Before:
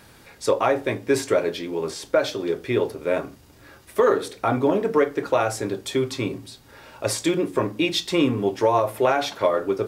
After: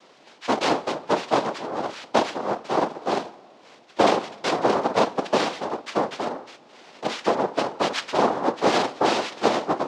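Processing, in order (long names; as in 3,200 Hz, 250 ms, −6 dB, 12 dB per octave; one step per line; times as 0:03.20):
cochlear-implant simulation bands 2
three-way crossover with the lows and the highs turned down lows −21 dB, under 210 Hz, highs −23 dB, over 4,800 Hz
on a send: convolution reverb RT60 2.3 s, pre-delay 55 ms, DRR 22 dB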